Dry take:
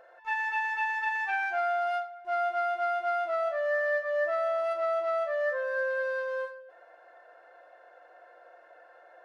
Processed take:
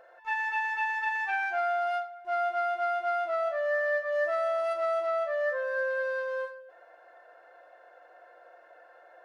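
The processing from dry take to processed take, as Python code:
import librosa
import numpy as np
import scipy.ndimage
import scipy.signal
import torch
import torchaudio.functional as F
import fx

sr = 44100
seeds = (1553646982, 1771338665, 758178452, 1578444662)

y = fx.high_shelf(x, sr, hz=5200.0, db=7.0, at=(4.12, 5.07))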